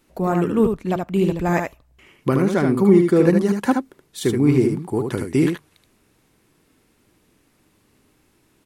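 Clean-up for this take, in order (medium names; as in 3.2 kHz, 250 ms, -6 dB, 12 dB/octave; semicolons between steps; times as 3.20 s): inverse comb 75 ms -5 dB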